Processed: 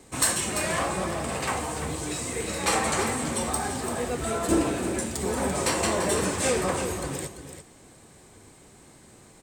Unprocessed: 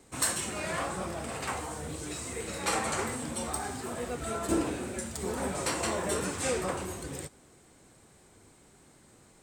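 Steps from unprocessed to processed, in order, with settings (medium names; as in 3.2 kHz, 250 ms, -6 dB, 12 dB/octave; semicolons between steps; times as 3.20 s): band-stop 1.4 kHz, Q 15; in parallel at -7 dB: one-sided clip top -31.5 dBFS; on the sum: delay 340 ms -9.5 dB; trim +3 dB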